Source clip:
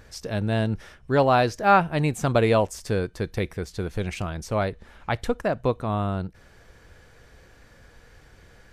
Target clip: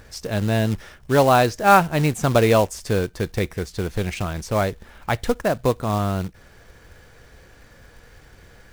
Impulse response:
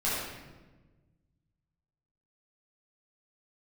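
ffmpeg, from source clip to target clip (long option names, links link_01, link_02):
-af "acrusher=bits=4:mode=log:mix=0:aa=0.000001,volume=3.5dB"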